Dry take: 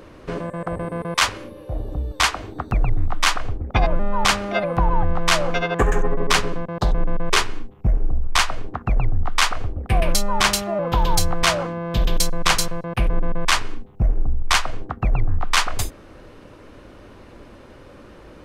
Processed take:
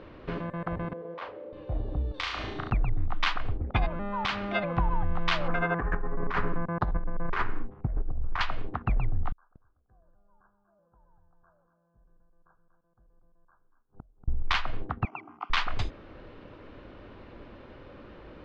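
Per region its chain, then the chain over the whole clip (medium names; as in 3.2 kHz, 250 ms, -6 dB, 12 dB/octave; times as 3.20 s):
0.93–1.53 s: jump at every zero crossing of -32.5 dBFS + band-pass filter 500 Hz, Q 3.5 + doubling 36 ms -5.5 dB
2.14–2.70 s: treble shelf 2 kHz +11 dB + compression, threshold -26 dBFS + flutter echo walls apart 6 m, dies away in 0.67 s
3.88–4.43 s: high-pass 100 Hz 6 dB/octave + compression 3:1, threshold -21 dBFS
5.48–8.41 s: resonant high shelf 2.3 kHz -12.5 dB, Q 1.5 + compressor with a negative ratio -19 dBFS, ratio -0.5
9.32–14.28 s: brick-wall FIR low-pass 1.7 kHz + inverted gate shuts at -25 dBFS, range -41 dB + delay 237 ms -10 dB
15.05–15.50 s: high-pass 300 Hz 24 dB/octave + static phaser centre 2.6 kHz, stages 8
whole clip: low-pass 4 kHz 24 dB/octave; dynamic bell 520 Hz, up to -6 dB, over -36 dBFS, Q 1.4; compression, threshold -17 dBFS; trim -4 dB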